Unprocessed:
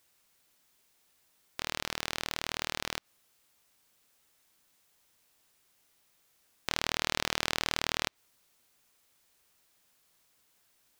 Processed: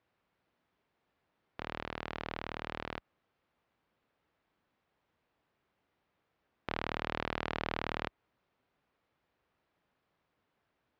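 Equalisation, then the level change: high-pass 44 Hz; low-pass 1.3 kHz 6 dB/octave; distance through air 220 m; +1.5 dB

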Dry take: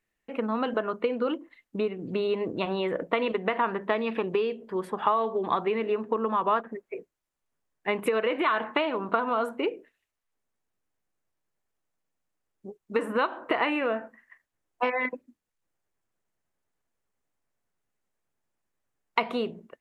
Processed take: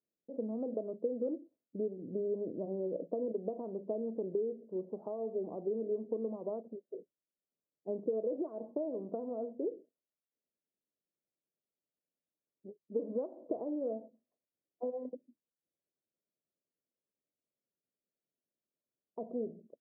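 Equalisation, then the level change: high-pass 170 Hz; elliptic low-pass 610 Hz, stop band 80 dB; -6.5 dB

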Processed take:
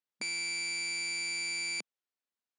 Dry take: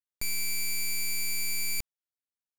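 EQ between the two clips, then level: brick-wall FIR band-pass 180–9500 Hz; distance through air 84 m; +3.0 dB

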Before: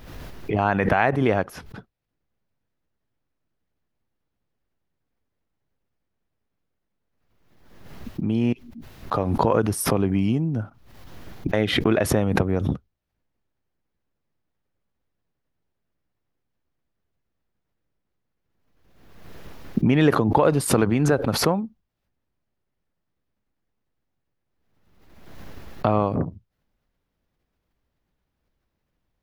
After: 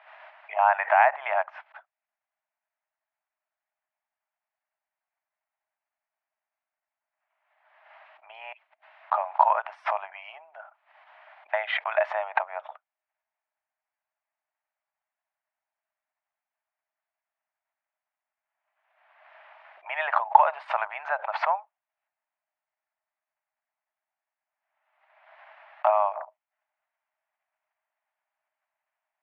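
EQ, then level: low-pass 2.4 kHz 24 dB/octave; dynamic bell 910 Hz, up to +5 dB, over -39 dBFS, Q 2.8; rippled Chebyshev high-pass 610 Hz, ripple 3 dB; +1.5 dB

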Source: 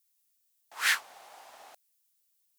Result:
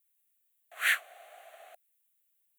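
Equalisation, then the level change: resonant high-pass 680 Hz, resonance Q 4.9; static phaser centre 2.2 kHz, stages 4; 0.0 dB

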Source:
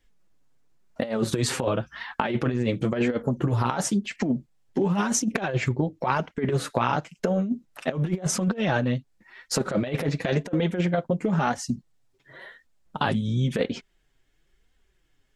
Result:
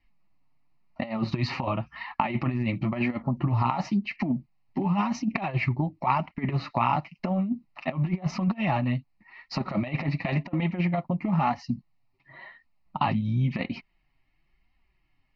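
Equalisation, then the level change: steep low-pass 4.2 kHz 36 dB/octave; bass shelf 93 Hz -5.5 dB; static phaser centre 2.3 kHz, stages 8; +2.5 dB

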